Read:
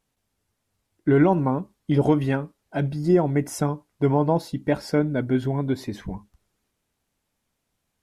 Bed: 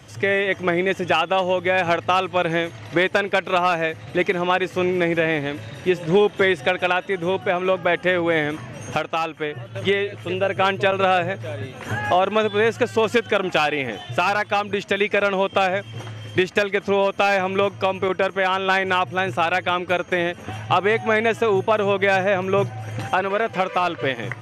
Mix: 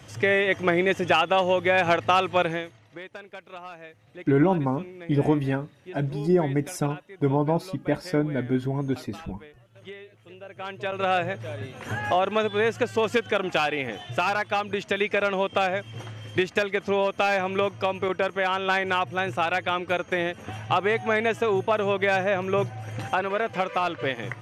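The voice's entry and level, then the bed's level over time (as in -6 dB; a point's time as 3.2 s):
3.20 s, -2.5 dB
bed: 2.41 s -1.5 dB
2.88 s -21.5 dB
10.44 s -21.5 dB
11.14 s -4.5 dB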